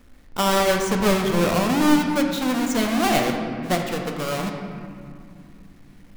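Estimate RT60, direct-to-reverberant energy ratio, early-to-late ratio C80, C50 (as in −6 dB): 2.5 s, 2.0 dB, 5.0 dB, 4.0 dB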